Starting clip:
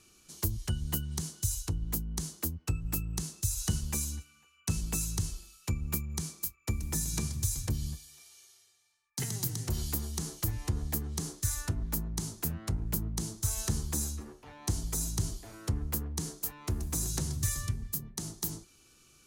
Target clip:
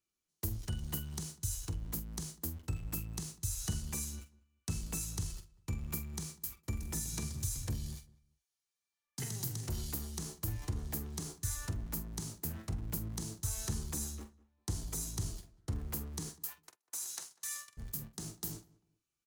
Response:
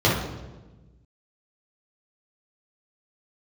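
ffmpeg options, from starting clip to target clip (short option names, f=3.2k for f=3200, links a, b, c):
-filter_complex "[0:a]aeval=exprs='val(0)+0.5*0.0075*sgn(val(0))':c=same,asettb=1/sr,asplit=3[a][b][c];[a]atrim=end=16.294[d];[b]atrim=start=16.29:end=17.77,asetpts=PTS-STARTPTS,afade=t=in:d=0.004:c=qsin,afade=t=out:st=1.476:d=0.004:c=qsin,highpass=990[e];[c]atrim=start=17.766[f];[d][e]acrossfade=d=0.004:c1=hsin:c2=qsin[g];[g][f]acrossfade=d=0.004:c1=qsin:c2=hsin,agate=range=-37dB:threshold=-38dB:ratio=16:detection=peak,asplit=2[h][i];[i]adelay=46,volume=-11dB[j];[h][j]amix=inputs=2:normalize=0,asplit=2[k][l];[l]adelay=197,lowpass=f=1.7k:p=1,volume=-21dB,asplit=2[m][n];[n]adelay=197,lowpass=f=1.7k:p=1,volume=0.26[o];[k][m][o]amix=inputs=3:normalize=0,volume=-6.5dB"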